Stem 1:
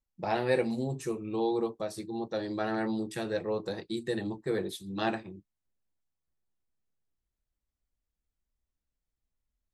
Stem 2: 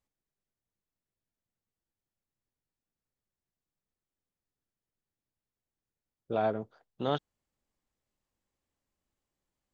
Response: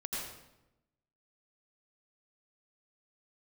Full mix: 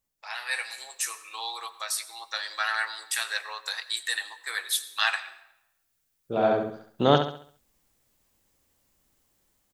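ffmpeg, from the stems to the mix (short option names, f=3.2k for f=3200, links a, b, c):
-filter_complex "[0:a]highpass=f=1.2k:w=0.5412,highpass=f=1.2k:w=1.3066,volume=0dB,asplit=3[a][b][c];[b]volume=-15dB[d];[1:a]volume=1dB,asplit=2[e][f];[f]volume=-9dB[g];[c]apad=whole_len=429265[h];[e][h]sidechaincompress=threshold=-56dB:ratio=8:attack=6.8:release=1220[i];[2:a]atrim=start_sample=2205[j];[d][j]afir=irnorm=-1:irlink=0[k];[g]aecho=0:1:68|136|204|272|340|408:1|0.4|0.16|0.064|0.0256|0.0102[l];[a][i][k][l]amix=inputs=4:normalize=0,highshelf=f=7.8k:g=10,dynaudnorm=f=180:g=7:m=11.5dB"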